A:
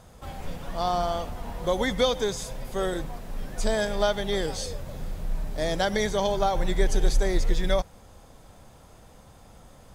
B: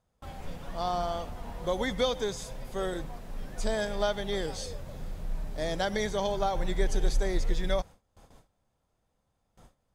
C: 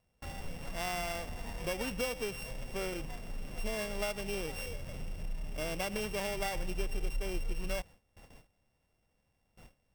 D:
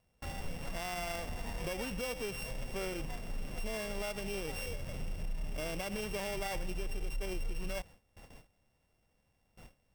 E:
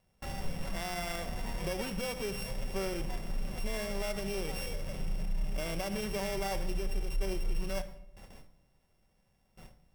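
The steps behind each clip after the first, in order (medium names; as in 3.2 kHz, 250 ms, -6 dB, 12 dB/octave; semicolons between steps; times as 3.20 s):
gate with hold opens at -38 dBFS; treble shelf 9.8 kHz -4 dB; trim -4.5 dB
sorted samples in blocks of 16 samples; compression 2:1, threshold -37 dBFS, peak gain reduction 10 dB
peak limiter -30.5 dBFS, peak gain reduction 8.5 dB; trim +1.5 dB
reverberation RT60 0.80 s, pre-delay 5 ms, DRR 8 dB; trim +1.5 dB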